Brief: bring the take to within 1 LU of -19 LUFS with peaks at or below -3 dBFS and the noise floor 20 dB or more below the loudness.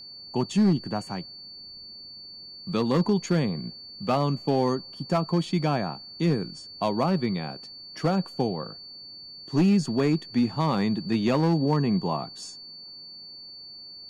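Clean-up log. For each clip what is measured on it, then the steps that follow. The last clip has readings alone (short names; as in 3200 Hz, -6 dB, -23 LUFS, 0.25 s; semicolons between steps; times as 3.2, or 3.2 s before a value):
clipped 0.9%; flat tops at -15.5 dBFS; steady tone 4500 Hz; tone level -41 dBFS; loudness -26.0 LUFS; peak -15.5 dBFS; loudness target -19.0 LUFS
-> clip repair -15.5 dBFS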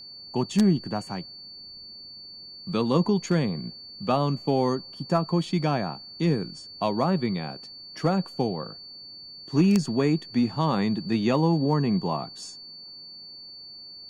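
clipped 0.0%; steady tone 4500 Hz; tone level -41 dBFS
-> notch 4500 Hz, Q 30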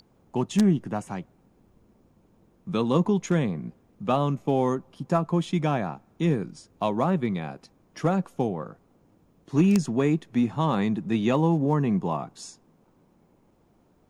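steady tone none; loudness -26.0 LUFS; peak -6.5 dBFS; loudness target -19.0 LUFS
-> gain +7 dB; limiter -3 dBFS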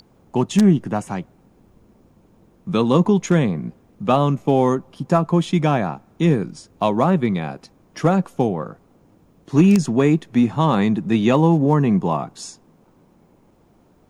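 loudness -19.0 LUFS; peak -3.0 dBFS; noise floor -56 dBFS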